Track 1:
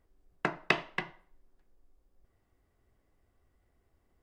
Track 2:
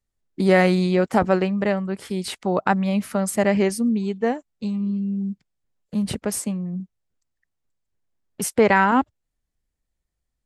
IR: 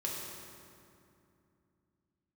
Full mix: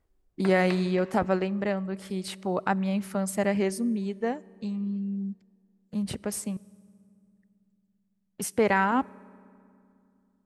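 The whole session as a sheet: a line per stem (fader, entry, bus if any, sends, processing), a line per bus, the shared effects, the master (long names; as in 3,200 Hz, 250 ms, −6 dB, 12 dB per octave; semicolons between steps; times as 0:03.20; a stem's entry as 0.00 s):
−2.5 dB, 0.00 s, send −16 dB, automatic ducking −16 dB, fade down 1.00 s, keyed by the second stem
−7.0 dB, 0.00 s, muted 0:06.57–0:07.23, send −23.5 dB, no processing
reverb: on, RT60 2.7 s, pre-delay 3 ms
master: no processing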